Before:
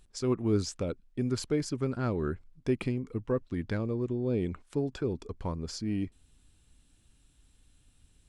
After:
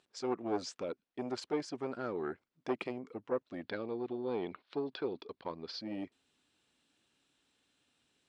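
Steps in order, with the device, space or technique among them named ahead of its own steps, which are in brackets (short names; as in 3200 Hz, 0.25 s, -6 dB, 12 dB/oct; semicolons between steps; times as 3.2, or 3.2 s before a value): 3.64–5.81 resonant high shelf 5600 Hz -11 dB, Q 3; public-address speaker with an overloaded transformer (core saturation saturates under 450 Hz; BPF 340–5000 Hz); gain -1 dB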